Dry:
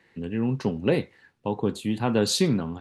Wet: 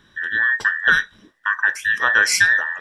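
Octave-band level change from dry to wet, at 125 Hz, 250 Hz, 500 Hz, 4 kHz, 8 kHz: -16.5 dB, -19.5 dB, -11.0 dB, +5.0 dB, +8.5 dB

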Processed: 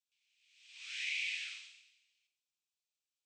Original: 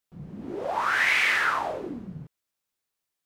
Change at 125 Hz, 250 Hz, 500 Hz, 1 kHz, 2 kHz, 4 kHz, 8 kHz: under -40 dB, under -40 dB, under -40 dB, under -40 dB, -17.5 dB, -9.0 dB, -10.0 dB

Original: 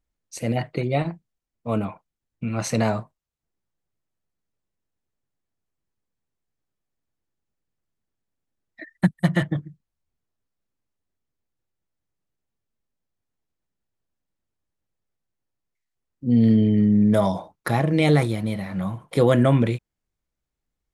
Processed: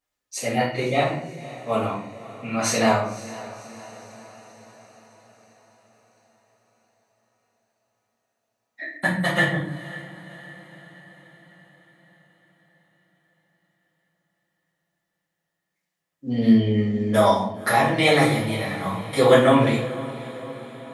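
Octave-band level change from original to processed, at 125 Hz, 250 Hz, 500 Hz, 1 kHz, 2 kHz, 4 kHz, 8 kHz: -4.0 dB, -1.5 dB, +4.0 dB, +7.5 dB, +8.5 dB, +8.0 dB, no reading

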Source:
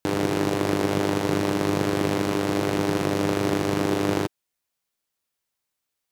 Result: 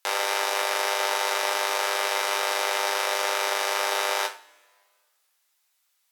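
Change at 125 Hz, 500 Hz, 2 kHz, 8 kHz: under -40 dB, -5.0 dB, +6.5 dB, +7.0 dB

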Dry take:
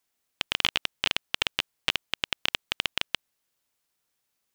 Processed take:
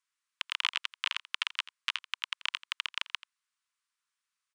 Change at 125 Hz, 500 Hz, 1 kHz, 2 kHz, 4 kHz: under -40 dB, under -40 dB, -4.5 dB, -4.0 dB, -5.5 dB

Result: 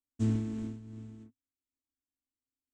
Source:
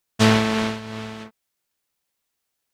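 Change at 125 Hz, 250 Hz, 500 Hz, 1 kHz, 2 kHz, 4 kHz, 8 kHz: -8.5 dB, -12.0 dB, -22.5 dB, -32.5 dB, -33.5 dB, under -30 dB, under -20 dB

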